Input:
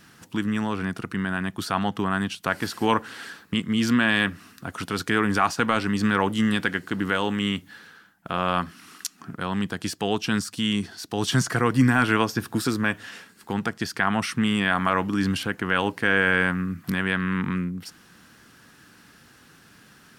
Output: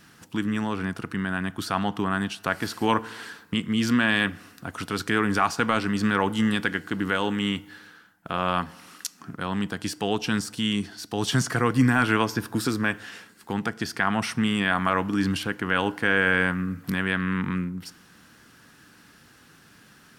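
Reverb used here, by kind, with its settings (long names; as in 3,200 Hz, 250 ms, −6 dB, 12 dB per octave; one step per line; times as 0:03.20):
feedback delay network reverb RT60 1.1 s, low-frequency decay 0.85×, high-frequency decay 0.55×, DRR 18 dB
level −1 dB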